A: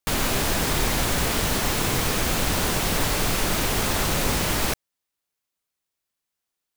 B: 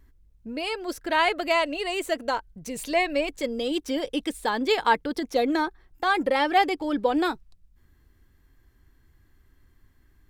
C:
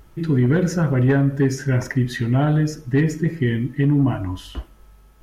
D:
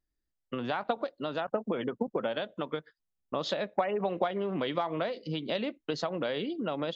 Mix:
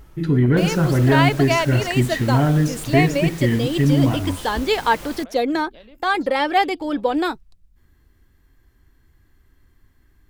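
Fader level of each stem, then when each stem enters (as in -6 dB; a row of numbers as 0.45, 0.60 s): -14.5, +3.0, +1.0, -14.5 dB; 0.50, 0.00, 0.00, 0.25 s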